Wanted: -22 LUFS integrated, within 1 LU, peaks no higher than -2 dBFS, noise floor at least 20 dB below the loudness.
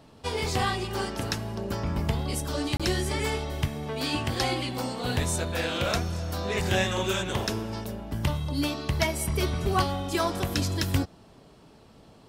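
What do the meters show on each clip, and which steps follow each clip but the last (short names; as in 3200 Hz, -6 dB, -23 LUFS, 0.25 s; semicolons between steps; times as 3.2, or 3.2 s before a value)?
dropouts 1; longest dropout 26 ms; loudness -28.5 LUFS; peak -9.0 dBFS; loudness target -22.0 LUFS
-> interpolate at 2.77, 26 ms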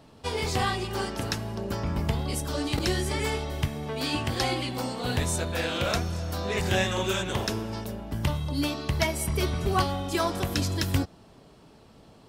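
dropouts 0; loudness -28.5 LUFS; peak -9.0 dBFS; loudness target -22.0 LUFS
-> gain +6.5 dB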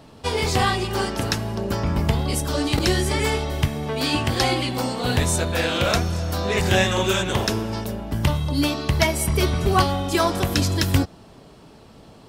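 loudness -22.0 LUFS; peak -2.5 dBFS; noise floor -47 dBFS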